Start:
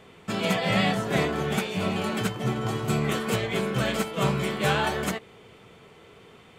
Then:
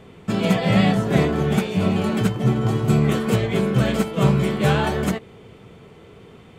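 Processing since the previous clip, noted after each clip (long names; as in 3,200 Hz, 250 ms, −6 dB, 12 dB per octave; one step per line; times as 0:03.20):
low-shelf EQ 470 Hz +10.5 dB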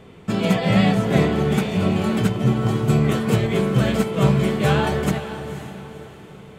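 feedback delay with all-pass diffusion 509 ms, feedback 40%, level −11 dB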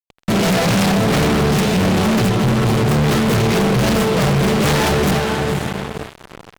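phase distortion by the signal itself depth 0.79 ms
fuzz pedal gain 31 dB, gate −36 dBFS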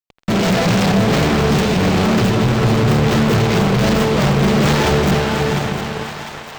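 parametric band 11,000 Hz −13 dB 0.5 octaves
echo with a time of its own for lows and highs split 680 Hz, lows 198 ms, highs 702 ms, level −8 dB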